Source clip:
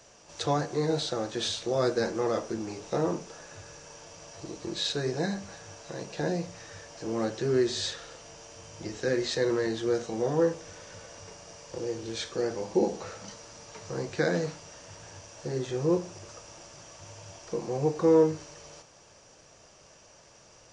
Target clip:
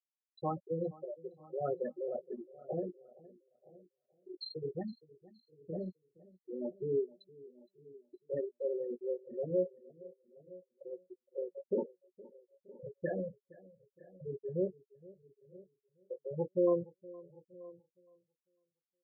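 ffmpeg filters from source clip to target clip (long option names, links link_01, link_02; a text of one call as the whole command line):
ffmpeg -i in.wav -filter_complex "[0:a]afftfilt=real='re*gte(hypot(re,im),0.178)':imag='im*gte(hypot(re,im),0.178)':win_size=1024:overlap=0.75,asplit=2[link_01][link_02];[link_02]adelay=18,volume=-13.5dB[link_03];[link_01][link_03]amix=inputs=2:normalize=0,asplit=2[link_04][link_05];[link_05]adelay=1050,volume=-22dB,highshelf=frequency=4000:gain=-23.6[link_06];[link_04][link_06]amix=inputs=2:normalize=0,asetrate=48000,aresample=44100,asplit=2[link_07][link_08];[link_08]aecho=0:1:466|932|1398:0.0841|0.0328|0.0128[link_09];[link_07][link_09]amix=inputs=2:normalize=0,volume=-7.5dB" out.wav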